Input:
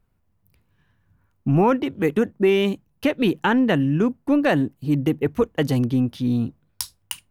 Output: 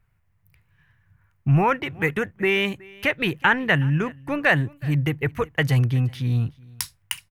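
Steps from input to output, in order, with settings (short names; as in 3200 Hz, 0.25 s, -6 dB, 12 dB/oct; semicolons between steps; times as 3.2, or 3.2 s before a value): ten-band EQ 125 Hz +8 dB, 250 Hz -12 dB, 500 Hz -3 dB, 2000 Hz +10 dB, 4000 Hz -3 dB; echo 0.37 s -24 dB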